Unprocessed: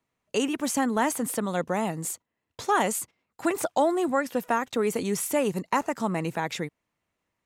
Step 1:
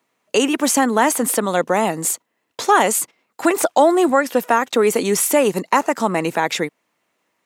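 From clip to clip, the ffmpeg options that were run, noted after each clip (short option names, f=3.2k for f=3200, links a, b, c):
-filter_complex "[0:a]highpass=260,asplit=2[a][b];[b]alimiter=limit=-19.5dB:level=0:latency=1:release=253,volume=-1dB[c];[a][c]amix=inputs=2:normalize=0,volume=6.5dB"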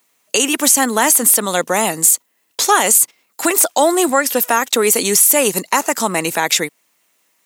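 -af "crystalizer=i=5:c=0,alimiter=limit=0dB:level=0:latency=1:release=69,volume=-1dB"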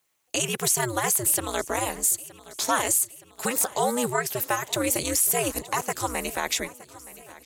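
-af "aeval=exprs='val(0)*sin(2*PI*120*n/s)':c=same,aecho=1:1:920|1840|2760|3680:0.112|0.0606|0.0327|0.0177,volume=-8dB"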